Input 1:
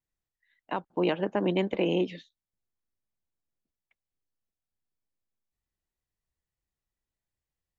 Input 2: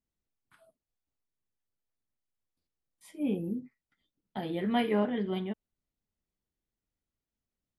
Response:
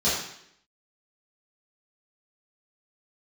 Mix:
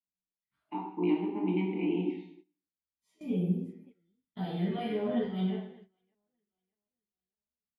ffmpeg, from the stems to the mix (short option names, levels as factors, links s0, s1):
-filter_complex "[0:a]asplit=3[s0][s1][s2];[s0]bandpass=f=300:t=q:w=8,volume=1[s3];[s1]bandpass=f=870:t=q:w=8,volume=0.501[s4];[s2]bandpass=f=2240:t=q:w=8,volume=0.355[s5];[s3][s4][s5]amix=inputs=3:normalize=0,volume=1.26,asplit=3[s6][s7][s8];[s7]volume=0.282[s9];[1:a]alimiter=level_in=1.41:limit=0.0631:level=0:latency=1:release=10,volume=0.708,asplit=2[s10][s11];[s11]adelay=8.7,afreqshift=0.9[s12];[s10][s12]amix=inputs=2:normalize=1,volume=0.422,asplit=3[s13][s14][s15];[s14]volume=0.631[s16];[s15]volume=0.188[s17];[s8]apad=whole_len=343557[s18];[s13][s18]sidechaincompress=threshold=0.00224:ratio=8:attack=16:release=1210[s19];[2:a]atrim=start_sample=2205[s20];[s9][s16]amix=inputs=2:normalize=0[s21];[s21][s20]afir=irnorm=-1:irlink=0[s22];[s17]aecho=0:1:608|1216|1824|2432:1|0.29|0.0841|0.0244[s23];[s6][s19][s22][s23]amix=inputs=4:normalize=0,agate=range=0.158:threshold=0.00224:ratio=16:detection=peak"